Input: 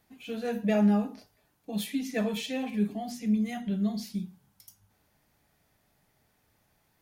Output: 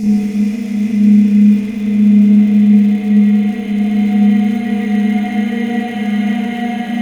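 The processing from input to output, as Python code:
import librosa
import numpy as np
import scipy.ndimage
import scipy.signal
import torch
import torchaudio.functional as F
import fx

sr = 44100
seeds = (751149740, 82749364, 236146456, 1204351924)

y = fx.paulstretch(x, sr, seeds[0], factor=21.0, window_s=0.5, from_s=3.23)
y = fx.dmg_crackle(y, sr, seeds[1], per_s=200.0, level_db=-37.0)
y = fx.rev_spring(y, sr, rt60_s=2.0, pass_ms=(34, 58), chirp_ms=75, drr_db=-9.0)
y = F.gain(torch.from_numpy(y), 6.0).numpy()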